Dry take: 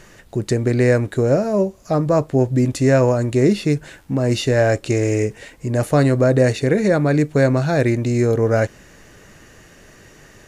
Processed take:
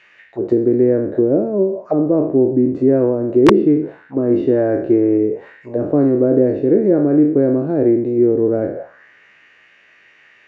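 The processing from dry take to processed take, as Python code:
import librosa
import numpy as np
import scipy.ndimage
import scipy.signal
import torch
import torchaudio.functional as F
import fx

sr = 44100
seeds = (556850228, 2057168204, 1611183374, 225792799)

y = fx.spec_trails(x, sr, decay_s=0.64)
y = fx.dynamic_eq(y, sr, hz=1400.0, q=0.76, threshold_db=-33.0, ratio=4.0, max_db=6, at=(3.53, 5.18))
y = fx.auto_wah(y, sr, base_hz=330.0, top_hz=2600.0, q=3.0, full_db=-14.5, direction='down')
y = (np.mod(10.0 ** (9.0 / 20.0) * y + 1.0, 2.0) - 1.0) / 10.0 ** (9.0 / 20.0)
y = fx.spacing_loss(y, sr, db_at_10k=21)
y = F.gain(torch.from_numpy(y), 8.5).numpy()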